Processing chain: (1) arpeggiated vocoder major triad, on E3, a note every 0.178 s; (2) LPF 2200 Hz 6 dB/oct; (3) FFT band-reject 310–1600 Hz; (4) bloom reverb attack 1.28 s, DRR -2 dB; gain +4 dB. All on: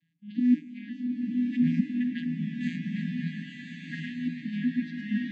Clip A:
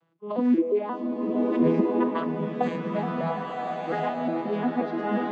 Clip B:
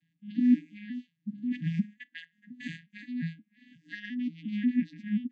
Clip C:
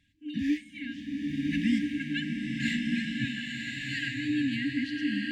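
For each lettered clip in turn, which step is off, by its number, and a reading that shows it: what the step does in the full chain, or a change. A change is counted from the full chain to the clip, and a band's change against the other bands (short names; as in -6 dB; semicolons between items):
3, 2 kHz band +2.0 dB; 4, momentary loudness spread change +7 LU; 1, 4 kHz band +13.5 dB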